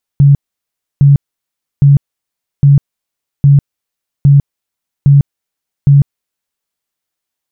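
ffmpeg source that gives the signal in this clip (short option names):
-f lavfi -i "aevalsrc='0.794*sin(2*PI*141*mod(t,0.81))*lt(mod(t,0.81),21/141)':d=6.48:s=44100"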